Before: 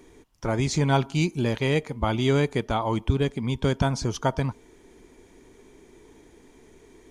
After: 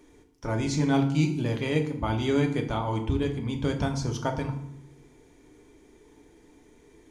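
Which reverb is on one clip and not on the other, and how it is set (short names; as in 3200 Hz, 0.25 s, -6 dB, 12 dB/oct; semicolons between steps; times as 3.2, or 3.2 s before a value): FDN reverb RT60 0.71 s, low-frequency decay 1.55×, high-frequency decay 0.75×, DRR 3.5 dB; gain -5.5 dB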